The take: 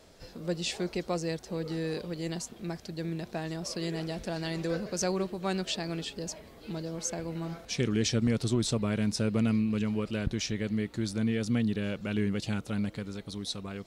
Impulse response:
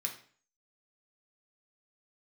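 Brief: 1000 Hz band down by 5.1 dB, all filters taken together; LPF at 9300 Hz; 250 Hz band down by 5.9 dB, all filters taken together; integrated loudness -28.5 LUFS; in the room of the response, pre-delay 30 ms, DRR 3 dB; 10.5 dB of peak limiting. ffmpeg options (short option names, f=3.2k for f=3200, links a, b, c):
-filter_complex "[0:a]lowpass=9.3k,equalizer=f=250:t=o:g=-7.5,equalizer=f=1k:t=o:g=-7,alimiter=level_in=3.5dB:limit=-24dB:level=0:latency=1,volume=-3.5dB,asplit=2[a][b];[1:a]atrim=start_sample=2205,adelay=30[c];[b][c]afir=irnorm=-1:irlink=0,volume=-4dB[d];[a][d]amix=inputs=2:normalize=0,volume=7.5dB"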